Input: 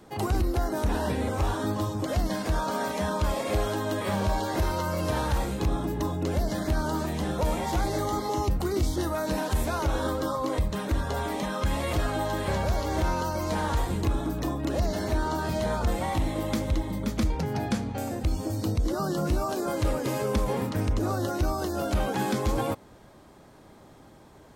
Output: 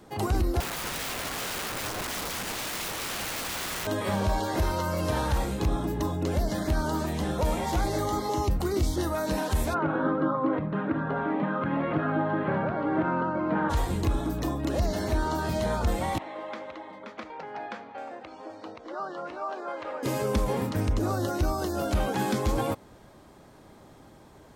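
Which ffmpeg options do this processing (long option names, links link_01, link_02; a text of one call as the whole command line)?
ffmpeg -i in.wav -filter_complex "[0:a]asettb=1/sr,asplit=3[link_01][link_02][link_03];[link_01]atrim=end=0.604[link_04];[link_02]atrim=start=0.6:end=3.87,asetpts=PTS-STARTPTS,afade=type=in:duration=0.004:curve=qsin,afade=type=out:start_time=3.266:duration=0.004:curve=qsin,aeval=exprs='(mod(26.6*val(0)+1,2)-1)/26.6':channel_layout=same[link_05];[link_03]atrim=start=3.866[link_06];[link_04][link_05]acrossfade=duration=0.004:curve1=hsin:curve2=qsin[link_07];[link_07][link_06]acrossfade=duration=0.004:curve1=qsin:curve2=hsin,asplit=3[link_08][link_09][link_10];[link_08]afade=type=out:start_time=9.73:duration=0.02[link_11];[link_09]highpass=frequency=140:width=0.5412,highpass=frequency=140:width=1.3066,equalizer=frequency=150:width_type=q:width=4:gain=10,equalizer=frequency=290:width_type=q:width=4:gain=8,equalizer=frequency=1400:width_type=q:width=4:gain=7,equalizer=frequency=2100:width_type=q:width=4:gain=-3,lowpass=frequency=2300:width=0.5412,lowpass=frequency=2300:width=1.3066,afade=type=in:start_time=9.73:duration=0.02,afade=type=out:start_time=13.69:duration=0.02[link_12];[link_10]afade=type=in:start_time=13.69:duration=0.02[link_13];[link_11][link_12][link_13]amix=inputs=3:normalize=0,asettb=1/sr,asplit=3[link_14][link_15][link_16];[link_14]atrim=end=16.184[link_17];[link_15]atrim=start=16.18:end=20.03,asetpts=PTS-STARTPTS,afade=type=in:duration=0.004:curve=qsin,afade=type=out:start_time=3.846:duration=0.004:curve=qsin,highpass=660,lowpass=2100[link_18];[link_16]atrim=start=20.026[link_19];[link_17][link_18]acrossfade=duration=0.004:curve1=hsin:curve2=qsin[link_20];[link_20][link_19]acrossfade=duration=0.004:curve1=qsin:curve2=hsin" out.wav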